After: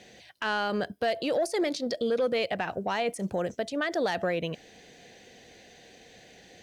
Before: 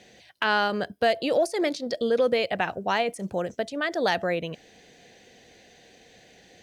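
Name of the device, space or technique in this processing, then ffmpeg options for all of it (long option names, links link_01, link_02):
soft clipper into limiter: -af "asoftclip=type=tanh:threshold=-14dB,alimiter=limit=-21.5dB:level=0:latency=1:release=92,volume=1dB"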